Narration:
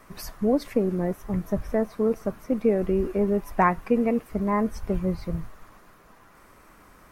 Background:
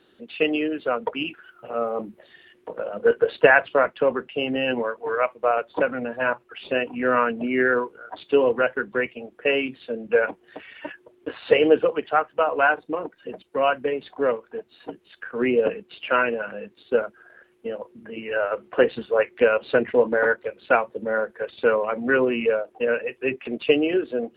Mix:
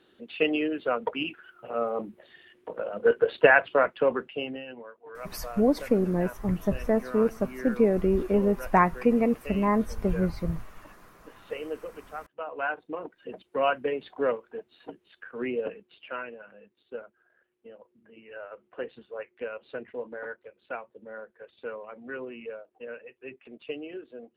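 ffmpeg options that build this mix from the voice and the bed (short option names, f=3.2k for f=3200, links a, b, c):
-filter_complex "[0:a]adelay=5150,volume=0dB[a];[1:a]volume=11.5dB,afade=t=out:st=4.22:d=0.43:silence=0.16788,afade=t=in:st=12.31:d=1.15:silence=0.188365,afade=t=out:st=14.2:d=2.12:silence=0.211349[b];[a][b]amix=inputs=2:normalize=0"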